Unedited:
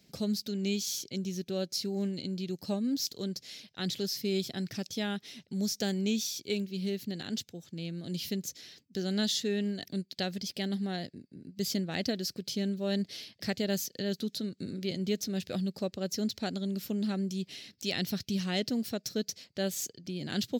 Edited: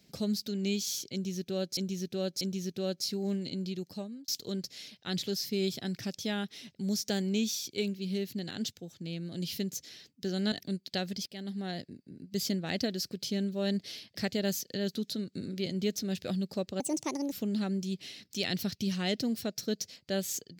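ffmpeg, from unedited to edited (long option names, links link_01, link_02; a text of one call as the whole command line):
ffmpeg -i in.wav -filter_complex "[0:a]asplit=8[link_01][link_02][link_03][link_04][link_05][link_06][link_07][link_08];[link_01]atrim=end=1.772[link_09];[link_02]atrim=start=1.128:end=1.772[link_10];[link_03]atrim=start=1.128:end=3,asetpts=PTS-STARTPTS,afade=type=out:start_time=1.282:duration=0.59[link_11];[link_04]atrim=start=3:end=9.242,asetpts=PTS-STARTPTS,afade=type=in:duration=0.004:curve=hsin[link_12];[link_05]atrim=start=9.768:end=10.51,asetpts=PTS-STARTPTS,afade=type=out:start_time=0.738:duration=0.004:curve=hsin:silence=0.199526[link_13];[link_06]atrim=start=10.51:end=16.054,asetpts=PTS-STARTPTS,afade=type=in:duration=0.55:silence=0.199526[link_14];[link_07]atrim=start=16.05:end=16.8,asetpts=PTS-STARTPTS,asetrate=63504,aresample=44100[link_15];[link_08]atrim=start=16.796[link_16];[link_09][link_10]acrossfade=duration=0.004:curve1=hsin:curve2=hsin[link_17];[link_11][link_12]concat=n=2:v=0:a=1[link_18];[link_17][link_18]acrossfade=duration=0.004:curve1=hsin:curve2=hsin[link_19];[link_13][link_14]concat=n=2:v=0:a=1[link_20];[link_19][link_20]acrossfade=duration=0.004:curve1=hsin:curve2=hsin[link_21];[link_21][link_15]acrossfade=duration=0.004:curve1=hsin:curve2=hsin[link_22];[link_22][link_16]acrossfade=duration=0.004:curve1=hsin:curve2=hsin" out.wav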